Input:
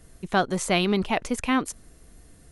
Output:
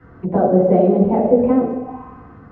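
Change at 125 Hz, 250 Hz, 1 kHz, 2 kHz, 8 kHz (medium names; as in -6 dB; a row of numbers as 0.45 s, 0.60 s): +10.5 dB, +10.5 dB, +5.0 dB, under -10 dB, under -40 dB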